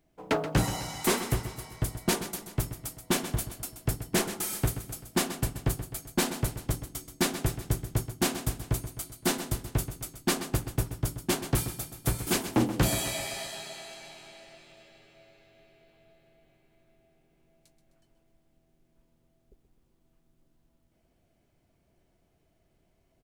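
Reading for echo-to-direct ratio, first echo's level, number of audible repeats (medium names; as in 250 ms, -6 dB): -10.0 dB, -11.5 dB, 5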